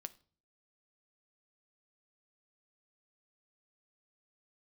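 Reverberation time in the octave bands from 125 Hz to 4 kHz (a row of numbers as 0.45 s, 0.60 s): 0.65 s, 0.60 s, 0.45 s, 0.40 s, 0.35 s, 0.40 s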